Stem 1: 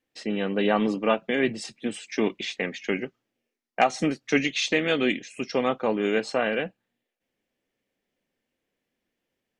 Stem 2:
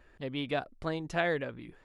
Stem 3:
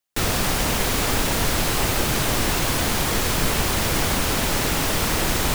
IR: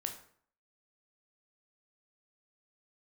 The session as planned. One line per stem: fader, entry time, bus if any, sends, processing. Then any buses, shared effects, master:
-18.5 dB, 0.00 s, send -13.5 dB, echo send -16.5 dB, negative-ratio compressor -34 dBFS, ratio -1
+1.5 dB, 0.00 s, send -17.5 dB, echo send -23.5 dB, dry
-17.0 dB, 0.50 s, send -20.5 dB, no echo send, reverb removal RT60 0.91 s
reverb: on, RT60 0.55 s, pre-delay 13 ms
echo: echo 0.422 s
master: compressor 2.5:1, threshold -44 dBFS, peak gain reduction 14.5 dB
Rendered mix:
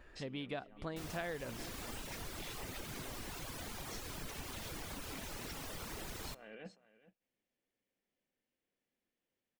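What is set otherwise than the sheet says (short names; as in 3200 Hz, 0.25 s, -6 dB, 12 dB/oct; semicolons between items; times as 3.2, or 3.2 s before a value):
stem 2: send off; stem 3: entry 0.50 s -> 0.80 s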